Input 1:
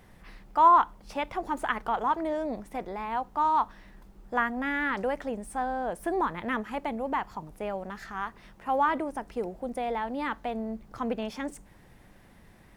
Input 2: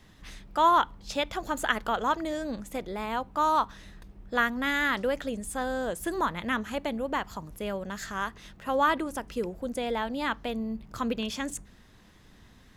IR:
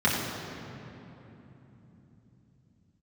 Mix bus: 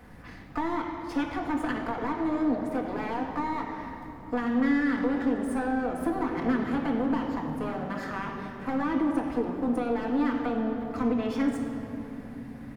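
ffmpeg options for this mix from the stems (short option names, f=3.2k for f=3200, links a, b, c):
-filter_complex "[0:a]acompressor=threshold=-32dB:ratio=6,aeval=exprs='clip(val(0),-1,0.00501)':c=same,volume=1dB,asplit=2[a][b];[b]volume=-12dB[c];[1:a]lowpass=5k,lowshelf=f=480:t=q:w=1.5:g=10,volume=-1,adelay=4.3,volume=-12dB,asplit=2[d][e];[e]volume=-19.5dB[f];[2:a]atrim=start_sample=2205[g];[c][f]amix=inputs=2:normalize=0[h];[h][g]afir=irnorm=-1:irlink=0[i];[a][d][i]amix=inputs=3:normalize=0,acrossover=split=390[j][k];[k]acompressor=threshold=-29dB:ratio=6[l];[j][l]amix=inputs=2:normalize=0"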